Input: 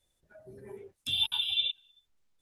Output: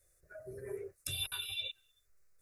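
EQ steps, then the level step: treble shelf 5.5 kHz +4.5 dB; static phaser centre 880 Hz, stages 6; +5.5 dB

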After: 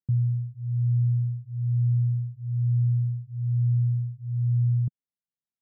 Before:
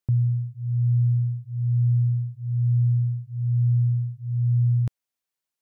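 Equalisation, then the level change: band-pass filter 160 Hz, Q 1.4; distance through air 440 m; 0.0 dB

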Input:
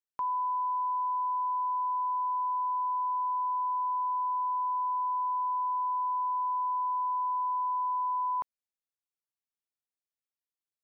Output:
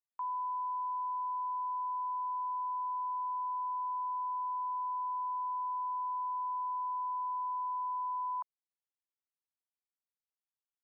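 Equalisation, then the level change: steep high-pass 790 Hz; low-pass 1.1 kHz 12 dB/octave; -3.0 dB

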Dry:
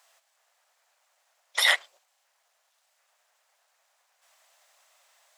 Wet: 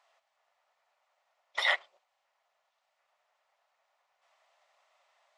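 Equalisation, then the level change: tape spacing loss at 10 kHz 25 dB; band-stop 490 Hz, Q 12; band-stop 1.6 kHz, Q 10; 0.0 dB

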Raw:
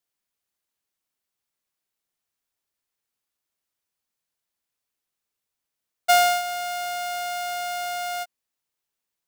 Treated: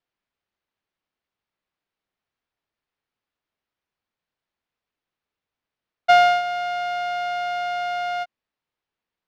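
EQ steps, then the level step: distance through air 250 m; +5.0 dB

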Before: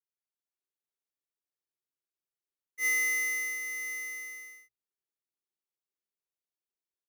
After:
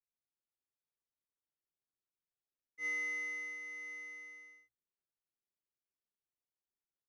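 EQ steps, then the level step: tape spacing loss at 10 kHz 26 dB; bass shelf 230 Hz +5.5 dB; -3.5 dB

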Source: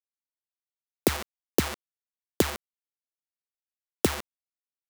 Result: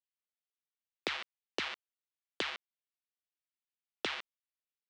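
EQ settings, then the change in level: low-pass 3.3 kHz 24 dB/octave; differentiator; +8.5 dB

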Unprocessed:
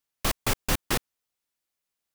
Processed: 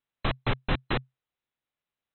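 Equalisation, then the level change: brick-wall FIR low-pass 4.1 kHz; distance through air 110 m; peaking EQ 130 Hz +7.5 dB 0.21 oct; 0.0 dB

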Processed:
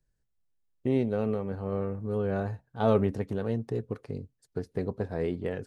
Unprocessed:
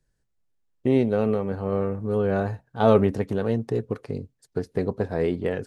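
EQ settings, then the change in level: bass shelf 140 Hz +4.5 dB; -7.0 dB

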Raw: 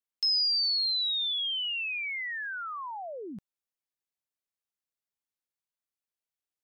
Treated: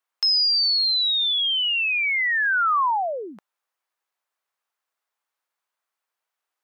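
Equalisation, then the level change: high-pass 390 Hz 12 dB/octave; peaking EQ 1.1 kHz +13 dB 2.2 oct; +4.5 dB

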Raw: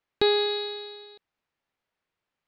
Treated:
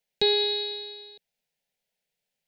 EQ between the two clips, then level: treble shelf 4 kHz +9.5 dB; static phaser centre 310 Hz, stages 6; 0.0 dB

